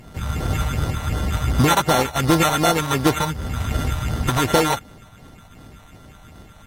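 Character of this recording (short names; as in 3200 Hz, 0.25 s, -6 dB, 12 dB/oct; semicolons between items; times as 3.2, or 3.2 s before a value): a buzz of ramps at a fixed pitch in blocks of 32 samples; phasing stages 4, 2.7 Hz, lowest notch 340–3800 Hz; aliases and images of a low sample rate 4900 Hz, jitter 0%; AAC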